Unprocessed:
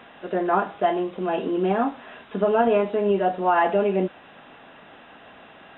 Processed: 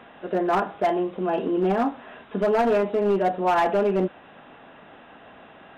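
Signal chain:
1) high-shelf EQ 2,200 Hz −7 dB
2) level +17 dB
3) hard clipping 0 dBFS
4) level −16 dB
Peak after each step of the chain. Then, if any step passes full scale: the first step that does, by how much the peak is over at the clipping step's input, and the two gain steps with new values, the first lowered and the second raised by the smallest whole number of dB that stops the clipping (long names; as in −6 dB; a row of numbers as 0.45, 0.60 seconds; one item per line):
−9.0, +8.0, 0.0, −16.0 dBFS
step 2, 8.0 dB
step 2 +9 dB, step 4 −8 dB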